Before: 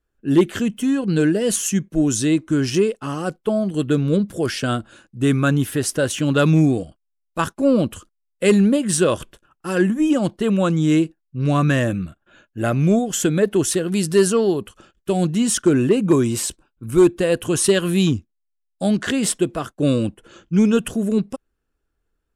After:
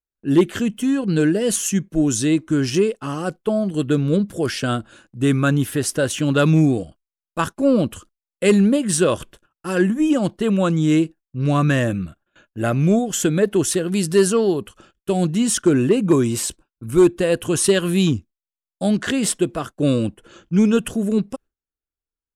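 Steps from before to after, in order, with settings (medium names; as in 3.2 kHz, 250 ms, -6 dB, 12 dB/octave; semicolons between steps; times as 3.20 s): gate with hold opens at -41 dBFS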